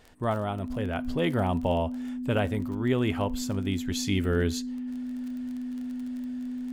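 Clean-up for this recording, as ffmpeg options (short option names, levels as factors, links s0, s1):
-af "adeclick=t=4,bandreject=f=250:w=30"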